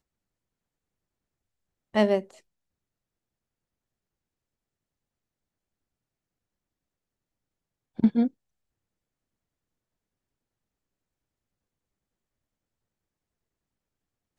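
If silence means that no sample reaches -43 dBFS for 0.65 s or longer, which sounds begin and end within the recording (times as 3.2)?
1.94–2.35
7.99–8.28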